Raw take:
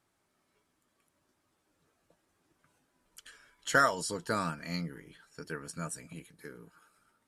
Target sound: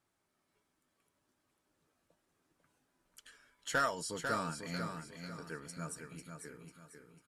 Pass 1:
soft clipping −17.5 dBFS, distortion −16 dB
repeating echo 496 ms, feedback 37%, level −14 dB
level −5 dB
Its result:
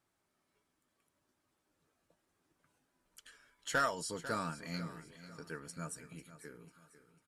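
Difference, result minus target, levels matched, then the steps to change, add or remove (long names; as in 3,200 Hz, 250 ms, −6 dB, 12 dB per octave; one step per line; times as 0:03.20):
echo-to-direct −7.5 dB
change: repeating echo 496 ms, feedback 37%, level −6.5 dB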